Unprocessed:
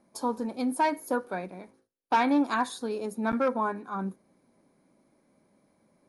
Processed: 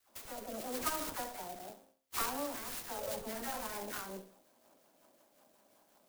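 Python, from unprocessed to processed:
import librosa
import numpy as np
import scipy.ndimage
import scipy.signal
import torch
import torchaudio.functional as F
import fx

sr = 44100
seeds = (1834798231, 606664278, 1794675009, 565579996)

p1 = fx.bass_treble(x, sr, bass_db=-15, treble_db=7)
p2 = fx.over_compress(p1, sr, threshold_db=-40.0, ratio=-1.0)
p3 = p1 + (p2 * librosa.db_to_amplitude(0.5))
p4 = fx.low_shelf(p3, sr, hz=120.0, db=-12.0)
p5 = fx.clip_asym(p4, sr, top_db=-35.5, bottom_db=-19.5)
p6 = fx.rotary_switch(p5, sr, hz=0.85, then_hz=5.5, switch_at_s=2.47)
p7 = p6 + fx.echo_feedback(p6, sr, ms=68, feedback_pct=36, wet_db=-11.5, dry=0)
p8 = fx.formant_shift(p7, sr, semitones=5)
p9 = fx.dispersion(p8, sr, late='lows', ms=92.0, hz=1300.0)
p10 = fx.clock_jitter(p9, sr, seeds[0], jitter_ms=0.097)
y = p10 * librosa.db_to_amplitude(-6.0)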